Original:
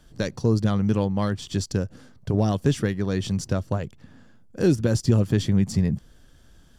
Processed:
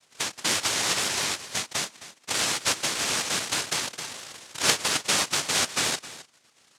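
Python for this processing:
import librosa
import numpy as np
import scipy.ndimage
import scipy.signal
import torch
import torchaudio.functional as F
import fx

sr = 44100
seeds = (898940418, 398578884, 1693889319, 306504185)

p1 = fx.noise_vocoder(x, sr, seeds[0], bands=1)
p2 = fx.level_steps(p1, sr, step_db=15)
p3 = p1 + (p2 * librosa.db_to_amplitude(-1.5))
p4 = fx.vibrato(p3, sr, rate_hz=6.0, depth_cents=30.0)
p5 = p4 + fx.echo_single(p4, sr, ms=264, db=-16.0, dry=0)
p6 = fx.env_flatten(p5, sr, amount_pct=50, at=(2.95, 4.59))
y = p6 * librosa.db_to_amplitude(-6.5)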